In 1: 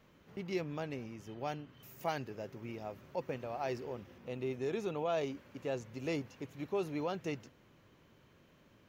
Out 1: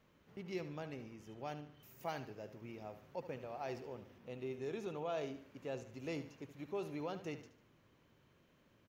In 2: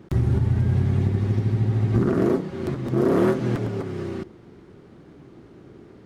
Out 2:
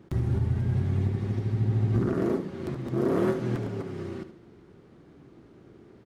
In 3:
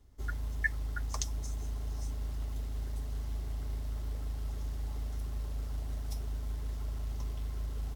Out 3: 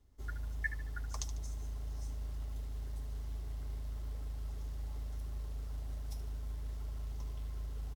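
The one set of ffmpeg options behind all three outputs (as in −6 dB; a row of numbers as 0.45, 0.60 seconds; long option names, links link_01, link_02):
-af "aecho=1:1:74|148|222|296:0.251|0.1|0.0402|0.0161,volume=-6dB"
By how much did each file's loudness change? −5.5, −5.5, −4.5 LU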